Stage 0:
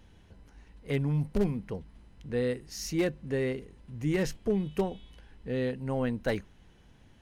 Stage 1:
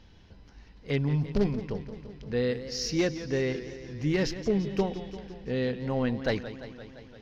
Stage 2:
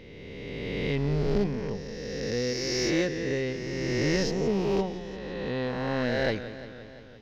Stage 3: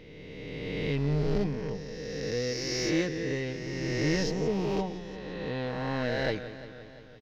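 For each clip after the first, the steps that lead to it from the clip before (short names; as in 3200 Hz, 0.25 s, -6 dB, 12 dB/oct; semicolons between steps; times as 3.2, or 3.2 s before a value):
resonant high shelf 6900 Hz -11.5 dB, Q 3; warbling echo 0.172 s, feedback 70%, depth 121 cents, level -13 dB; gain +1.5 dB
spectral swells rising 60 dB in 2.57 s; gain -3 dB
comb 6.5 ms, depth 34%; gain -2.5 dB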